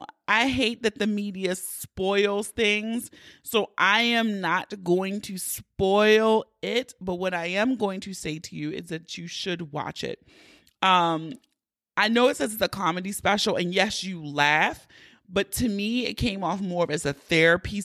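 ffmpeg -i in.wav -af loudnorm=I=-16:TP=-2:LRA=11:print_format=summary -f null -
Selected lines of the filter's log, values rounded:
Input Integrated:    -24.8 LUFS
Input True Peak:      -6.8 dBTP
Input LRA:             4.1 LU
Input Threshold:     -35.1 LUFS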